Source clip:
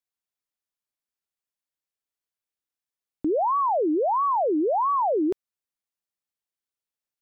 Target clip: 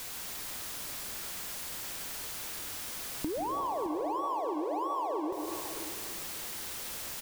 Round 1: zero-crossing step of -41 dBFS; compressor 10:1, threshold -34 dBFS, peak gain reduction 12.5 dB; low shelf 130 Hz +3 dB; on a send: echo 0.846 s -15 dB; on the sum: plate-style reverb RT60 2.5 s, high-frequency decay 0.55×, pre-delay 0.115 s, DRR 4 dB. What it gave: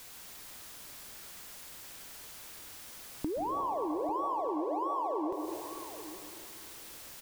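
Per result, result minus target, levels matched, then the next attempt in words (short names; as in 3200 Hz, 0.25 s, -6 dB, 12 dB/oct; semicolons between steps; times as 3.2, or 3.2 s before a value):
echo 0.23 s late; zero-crossing step: distortion -8 dB
zero-crossing step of -41 dBFS; compressor 10:1, threshold -34 dBFS, peak gain reduction 12.5 dB; low shelf 130 Hz +3 dB; on a send: echo 0.616 s -15 dB; on the sum: plate-style reverb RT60 2.5 s, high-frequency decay 0.55×, pre-delay 0.115 s, DRR 4 dB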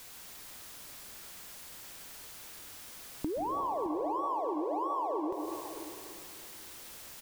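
zero-crossing step: distortion -8 dB
zero-crossing step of -32.5 dBFS; compressor 10:1, threshold -34 dBFS, peak gain reduction 13 dB; low shelf 130 Hz +3 dB; on a send: echo 0.616 s -15 dB; on the sum: plate-style reverb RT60 2.5 s, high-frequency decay 0.55×, pre-delay 0.115 s, DRR 4 dB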